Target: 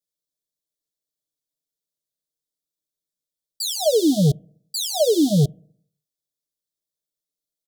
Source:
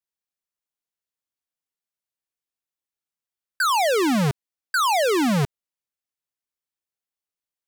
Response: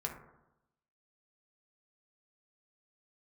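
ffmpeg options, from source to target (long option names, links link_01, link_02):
-filter_complex "[0:a]asuperstop=centerf=1500:order=20:qfactor=0.58,aecho=1:1:6.6:0.93,asplit=2[link_01][link_02];[1:a]atrim=start_sample=2205,asetrate=61740,aresample=44100[link_03];[link_02][link_03]afir=irnorm=-1:irlink=0,volume=-18dB[link_04];[link_01][link_04]amix=inputs=2:normalize=0"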